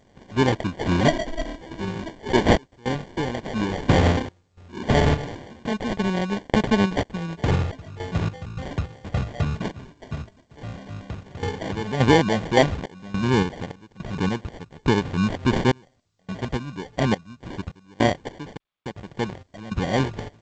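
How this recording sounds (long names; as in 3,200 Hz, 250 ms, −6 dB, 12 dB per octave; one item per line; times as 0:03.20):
sample-and-hold tremolo 3.5 Hz, depth 100%
aliases and images of a low sample rate 1,300 Hz, jitter 0%
G.722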